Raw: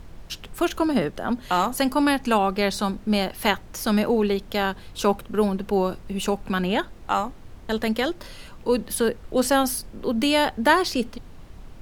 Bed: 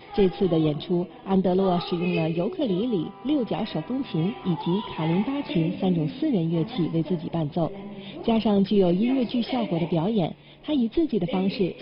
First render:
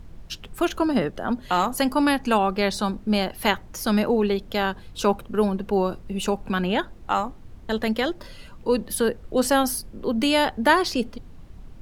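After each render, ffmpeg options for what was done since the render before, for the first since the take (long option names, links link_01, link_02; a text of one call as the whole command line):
ffmpeg -i in.wav -af "afftdn=noise_reduction=6:noise_floor=-44" out.wav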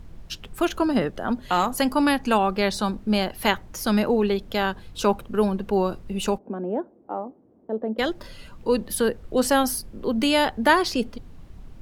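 ffmpeg -i in.wav -filter_complex "[0:a]asplit=3[link_01][link_02][link_03];[link_01]afade=type=out:start_time=6.37:duration=0.02[link_04];[link_02]asuperpass=centerf=400:order=4:qfactor=0.92,afade=type=in:start_time=6.37:duration=0.02,afade=type=out:start_time=7.98:duration=0.02[link_05];[link_03]afade=type=in:start_time=7.98:duration=0.02[link_06];[link_04][link_05][link_06]amix=inputs=3:normalize=0" out.wav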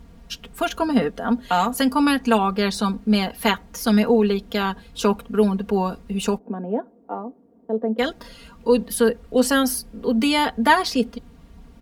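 ffmpeg -i in.wav -af "highpass=46,aecho=1:1:4.3:0.75" out.wav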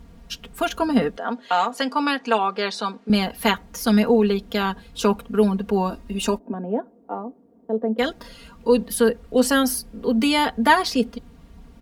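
ffmpeg -i in.wav -filter_complex "[0:a]asettb=1/sr,asplit=3[link_01][link_02][link_03];[link_01]atrim=end=1.174[link_04];[link_02]atrim=start=1.17:end=3.1,asetpts=PTS-STARTPTS,afade=type=in:duration=0.004:curve=qsin,afade=type=out:start_time=1.926:duration=0.004:curve=qsin,highpass=390,lowpass=5900[link_05];[link_03]atrim=start=3.096[link_06];[link_04][link_05]acrossfade=duration=0.004:curve1=hsin:curve2=qsin[link_07];[link_07][link_06]acrossfade=duration=0.004:curve1=qsin:curve2=hsin,asettb=1/sr,asplit=3[link_08][link_09][link_10];[link_08]atrim=end=5.904[link_11];[link_09]atrim=start=5.9:end=6.54,asetpts=PTS-STARTPTS,afade=type=in:duration=0.004:curve=qsin,afade=type=out:start_time=0.636:duration=0.004:curve=qsin,aecho=1:1:3.2:0.63,atrim=end_sample=28224[link_12];[link_10]atrim=start=6.536[link_13];[link_11][link_12]acrossfade=duration=0.004:curve1=hsin:curve2=qsin[link_14];[link_14][link_13]acrossfade=duration=0.004:curve1=qsin:curve2=hsin" out.wav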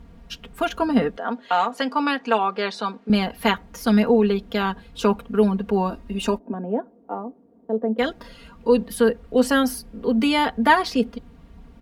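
ffmpeg -i in.wav -af "bass=frequency=250:gain=0,treble=frequency=4000:gain=-7" out.wav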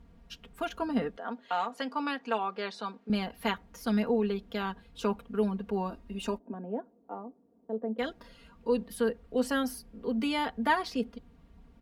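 ffmpeg -i in.wav -af "volume=-10.5dB" out.wav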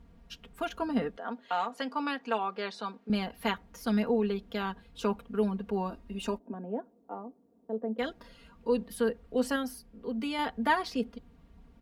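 ffmpeg -i in.wav -filter_complex "[0:a]asplit=3[link_01][link_02][link_03];[link_01]atrim=end=9.562[link_04];[link_02]atrim=start=9.558:end=10.392,asetpts=PTS-STARTPTS,volume=-3.5dB[link_05];[link_03]atrim=start=10.388[link_06];[link_04][link_05]acrossfade=duration=0.004:curve1=hsin:curve2=hsin[link_07];[link_07][link_06]acrossfade=duration=0.004:curve1=hsin:curve2=hsin" out.wav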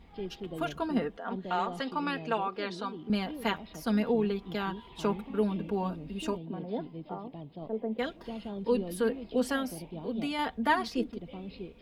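ffmpeg -i in.wav -i bed.wav -filter_complex "[1:a]volume=-18dB[link_01];[0:a][link_01]amix=inputs=2:normalize=0" out.wav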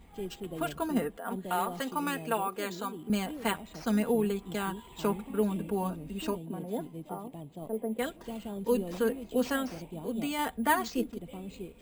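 ffmpeg -i in.wav -af "acrusher=samples=4:mix=1:aa=0.000001" out.wav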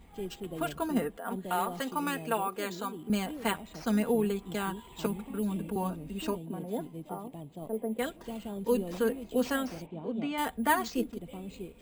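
ffmpeg -i in.wav -filter_complex "[0:a]asettb=1/sr,asplit=3[link_01][link_02][link_03];[link_01]atrim=end=5.064[link_04];[link_02]atrim=start=5.06:end=5.76,asetpts=PTS-STARTPTS,afade=type=in:duration=0.004:curve=qsin,afade=type=out:start_time=0.696:duration=0.004:curve=qsin,acrossover=split=290|3000[link_05][link_06][link_07];[link_06]acompressor=threshold=-39dB:ratio=6:attack=3.2:release=140:knee=2.83:detection=peak[link_08];[link_05][link_08][link_07]amix=inputs=3:normalize=0[link_09];[link_03]atrim=start=5.756[link_10];[link_04][link_09]acrossfade=duration=0.004:curve1=hsin:curve2=qsin[link_11];[link_11][link_10]acrossfade=duration=0.004:curve1=qsin:curve2=hsin,asettb=1/sr,asplit=3[link_12][link_13][link_14];[link_12]atrim=end=9.864[link_15];[link_13]atrim=start=9.86:end=10.38,asetpts=PTS-STARTPTS,afade=type=in:duration=0.004:curve=qsin,afade=type=out:start_time=0.516:duration=0.004:curve=qsin,highpass=100,lowpass=2800[link_16];[link_14]atrim=start=10.376[link_17];[link_15][link_16]acrossfade=duration=0.004:curve1=hsin:curve2=qsin[link_18];[link_18][link_17]acrossfade=duration=0.004:curve1=qsin:curve2=hsin" out.wav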